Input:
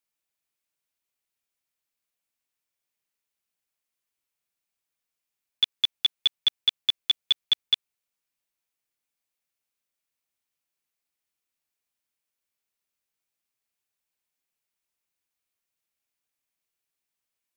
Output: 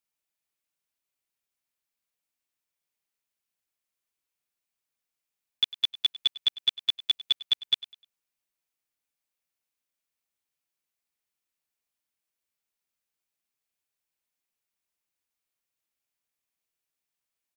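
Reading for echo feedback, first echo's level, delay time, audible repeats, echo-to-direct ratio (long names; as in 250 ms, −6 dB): 30%, −18.0 dB, 101 ms, 2, −17.5 dB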